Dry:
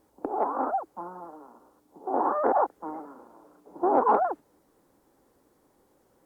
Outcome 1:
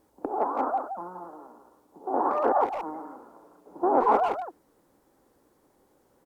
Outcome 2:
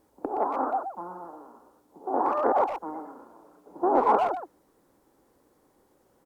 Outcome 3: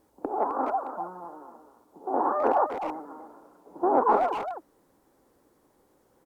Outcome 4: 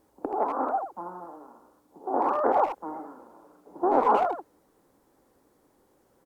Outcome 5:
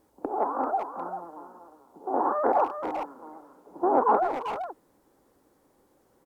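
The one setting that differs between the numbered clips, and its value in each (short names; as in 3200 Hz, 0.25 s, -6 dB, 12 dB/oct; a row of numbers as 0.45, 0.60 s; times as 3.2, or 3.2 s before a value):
speakerphone echo, time: 170, 120, 260, 80, 390 ms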